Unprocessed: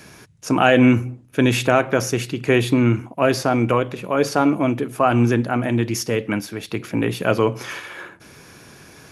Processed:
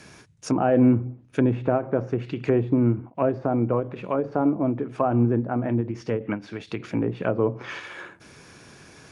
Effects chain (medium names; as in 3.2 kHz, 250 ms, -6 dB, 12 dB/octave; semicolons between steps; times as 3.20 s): resampled via 22.05 kHz; low-pass that closes with the level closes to 780 Hz, closed at -16 dBFS; endings held to a fixed fall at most 200 dB/s; trim -3.5 dB